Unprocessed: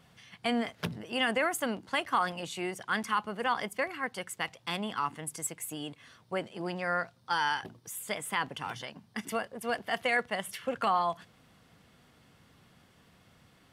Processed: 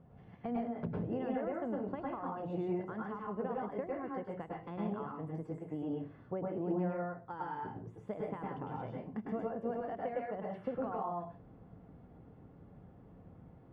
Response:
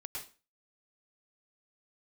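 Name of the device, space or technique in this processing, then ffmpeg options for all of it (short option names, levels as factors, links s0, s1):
television next door: -filter_complex "[0:a]acompressor=threshold=0.0141:ratio=4,lowpass=580[s0];[1:a]atrim=start_sample=2205[s1];[s0][s1]afir=irnorm=-1:irlink=0,volume=2.99"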